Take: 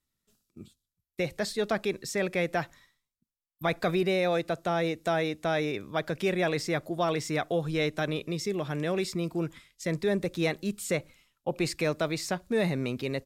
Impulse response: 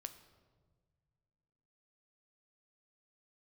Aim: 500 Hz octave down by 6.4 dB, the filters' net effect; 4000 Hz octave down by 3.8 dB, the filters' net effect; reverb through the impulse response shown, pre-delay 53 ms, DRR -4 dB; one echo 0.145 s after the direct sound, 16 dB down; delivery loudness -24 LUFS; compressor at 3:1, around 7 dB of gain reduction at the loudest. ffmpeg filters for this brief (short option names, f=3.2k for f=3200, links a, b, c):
-filter_complex "[0:a]equalizer=f=500:t=o:g=-8.5,equalizer=f=4k:t=o:g=-4.5,acompressor=threshold=-36dB:ratio=3,aecho=1:1:145:0.158,asplit=2[a][b];[1:a]atrim=start_sample=2205,adelay=53[c];[b][c]afir=irnorm=-1:irlink=0,volume=8.5dB[d];[a][d]amix=inputs=2:normalize=0,volume=9.5dB"